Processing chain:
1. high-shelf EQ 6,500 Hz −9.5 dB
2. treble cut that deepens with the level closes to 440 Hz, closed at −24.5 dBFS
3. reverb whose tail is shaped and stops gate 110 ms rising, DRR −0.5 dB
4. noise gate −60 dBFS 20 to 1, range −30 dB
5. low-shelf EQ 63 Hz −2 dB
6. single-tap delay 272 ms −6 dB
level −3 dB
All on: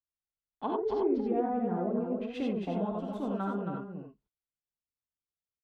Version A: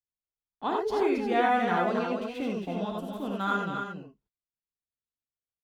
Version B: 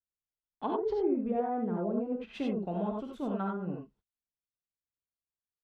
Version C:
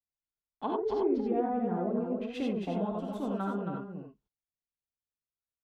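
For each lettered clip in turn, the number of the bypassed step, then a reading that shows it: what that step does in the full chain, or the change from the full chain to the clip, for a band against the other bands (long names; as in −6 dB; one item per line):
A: 2, 2 kHz band +15.0 dB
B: 6, change in momentary loudness spread −2 LU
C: 1, 4 kHz band +2.0 dB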